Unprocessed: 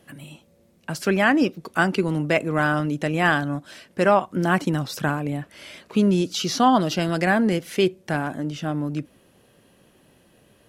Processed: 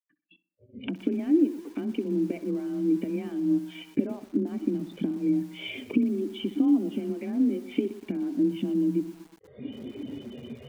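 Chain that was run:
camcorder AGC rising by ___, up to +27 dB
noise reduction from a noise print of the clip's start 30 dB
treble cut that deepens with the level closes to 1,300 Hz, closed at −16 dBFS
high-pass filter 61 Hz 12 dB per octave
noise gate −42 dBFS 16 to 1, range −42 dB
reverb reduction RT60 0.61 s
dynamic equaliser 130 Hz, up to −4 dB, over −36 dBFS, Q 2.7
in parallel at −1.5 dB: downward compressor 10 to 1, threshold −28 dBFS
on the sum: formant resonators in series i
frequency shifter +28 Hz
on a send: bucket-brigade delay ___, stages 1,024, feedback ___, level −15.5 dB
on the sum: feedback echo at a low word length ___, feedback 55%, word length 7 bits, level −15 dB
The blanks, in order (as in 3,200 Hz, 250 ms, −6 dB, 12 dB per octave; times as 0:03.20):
34 dB per second, 63 ms, 41%, 121 ms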